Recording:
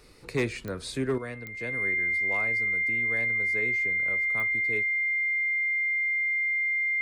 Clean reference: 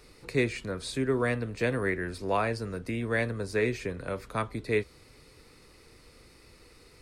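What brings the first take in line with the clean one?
clip repair -20 dBFS; de-click; notch 2100 Hz, Q 30; gain 0 dB, from 1.18 s +9.5 dB

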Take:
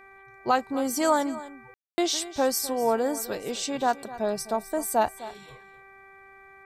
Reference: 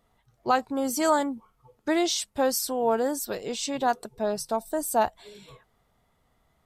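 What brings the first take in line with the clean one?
de-hum 389.7 Hz, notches 6; room tone fill 1.74–1.98; inverse comb 0.255 s -16 dB

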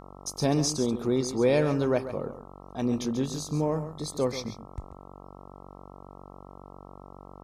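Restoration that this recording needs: de-hum 47.3 Hz, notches 28; inverse comb 0.136 s -11.5 dB

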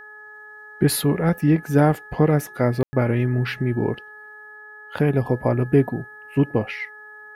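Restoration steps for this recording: de-hum 423.6 Hz, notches 3; notch 1700 Hz, Q 30; room tone fill 2.83–2.93

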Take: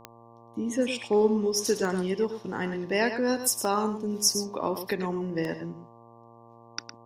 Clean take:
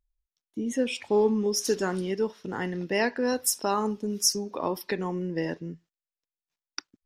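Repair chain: de-click; de-hum 116.3 Hz, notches 10; inverse comb 0.109 s -9.5 dB

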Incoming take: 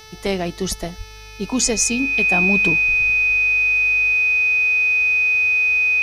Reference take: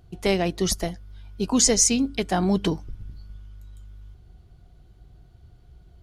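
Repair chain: de-hum 436.1 Hz, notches 14; notch 2500 Hz, Q 30; 0.97–1.09 HPF 140 Hz 24 dB/oct; expander -30 dBFS, range -21 dB

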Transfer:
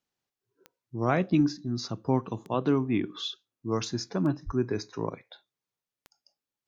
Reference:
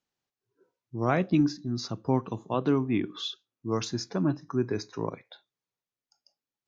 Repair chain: de-click; 4.45–4.57 HPF 140 Hz 24 dB/oct

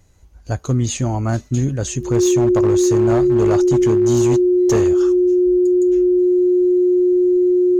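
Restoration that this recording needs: clip repair -10 dBFS; notch 360 Hz, Q 30

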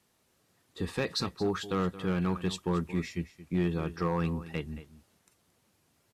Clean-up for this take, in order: clip repair -21 dBFS; inverse comb 0.224 s -15.5 dB

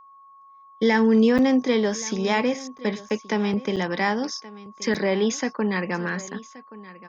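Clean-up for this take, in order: notch 1100 Hz, Q 30; interpolate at 1.38/2.78/3.09/3.76/4.94, 7.5 ms; inverse comb 1.125 s -18.5 dB

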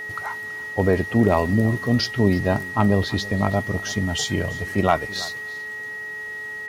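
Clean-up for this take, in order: clip repair -6 dBFS; de-hum 427.3 Hz, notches 6; notch 1900 Hz, Q 30; inverse comb 0.329 s -19.5 dB

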